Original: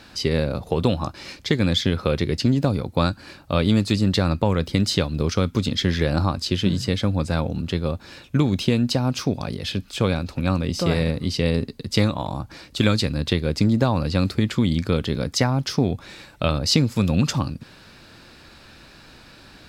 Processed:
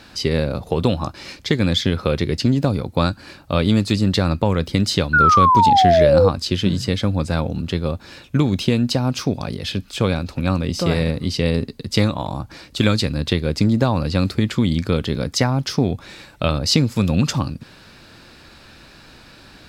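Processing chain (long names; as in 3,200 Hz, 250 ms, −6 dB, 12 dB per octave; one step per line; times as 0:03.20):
sound drawn into the spectrogram fall, 0:05.13–0:06.29, 470–1,500 Hz −15 dBFS
level +2 dB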